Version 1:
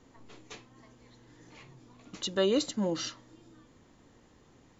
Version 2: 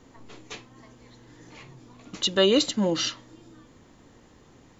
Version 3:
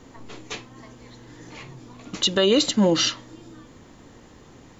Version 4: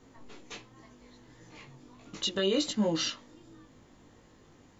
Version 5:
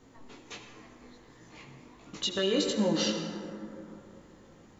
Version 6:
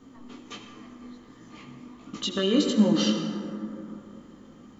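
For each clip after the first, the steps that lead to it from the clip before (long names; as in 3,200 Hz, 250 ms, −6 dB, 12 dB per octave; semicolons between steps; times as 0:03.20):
dynamic equaliser 3,000 Hz, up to +6 dB, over −50 dBFS, Q 1.2; level +6 dB
boost into a limiter +14.5 dB; level −8.5 dB
chorus effect 1.4 Hz, delay 18.5 ms, depth 2.1 ms; level −7 dB
convolution reverb RT60 3.1 s, pre-delay 68 ms, DRR 4 dB
hollow resonant body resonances 240/1,200/3,100 Hz, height 12 dB, ringing for 35 ms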